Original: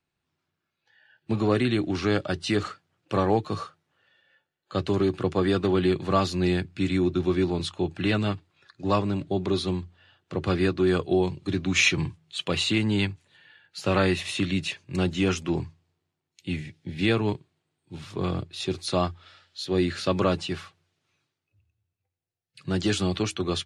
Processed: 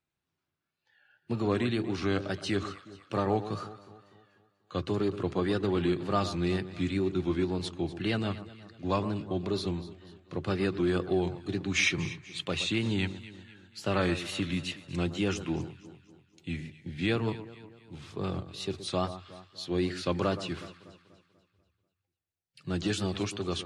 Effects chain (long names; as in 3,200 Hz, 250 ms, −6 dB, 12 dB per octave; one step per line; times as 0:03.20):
tape wow and flutter 96 cents
delay that swaps between a low-pass and a high-pass 122 ms, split 1,500 Hz, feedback 66%, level −12 dB
level −5.5 dB